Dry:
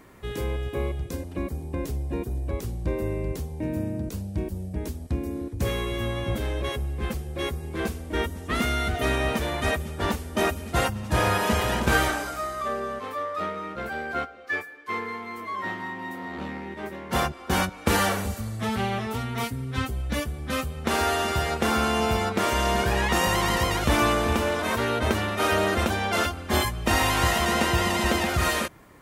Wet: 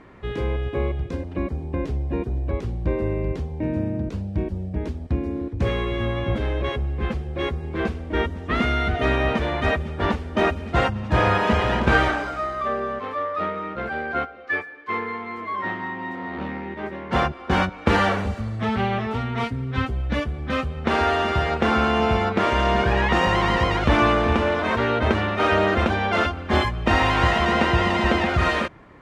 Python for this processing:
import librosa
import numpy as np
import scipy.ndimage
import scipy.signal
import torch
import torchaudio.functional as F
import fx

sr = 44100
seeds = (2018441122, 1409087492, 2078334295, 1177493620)

y = scipy.signal.sosfilt(scipy.signal.butter(2, 3000.0, 'lowpass', fs=sr, output='sos'), x)
y = y * 10.0 ** (4.0 / 20.0)